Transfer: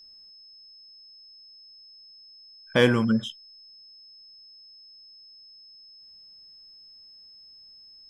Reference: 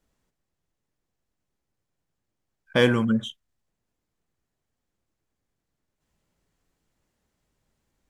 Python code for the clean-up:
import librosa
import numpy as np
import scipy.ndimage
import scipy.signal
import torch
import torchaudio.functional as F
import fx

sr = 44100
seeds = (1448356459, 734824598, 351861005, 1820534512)

y = fx.notch(x, sr, hz=5200.0, q=30.0)